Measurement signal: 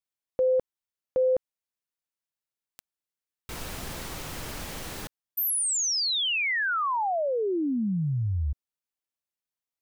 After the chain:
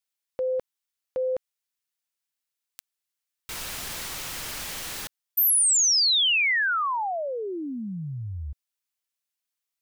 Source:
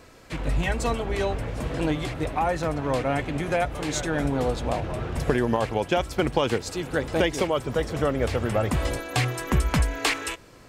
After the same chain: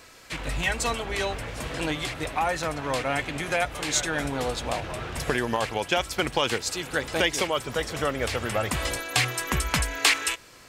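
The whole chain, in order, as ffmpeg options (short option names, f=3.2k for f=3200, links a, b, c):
-af "tiltshelf=f=970:g=-6.5"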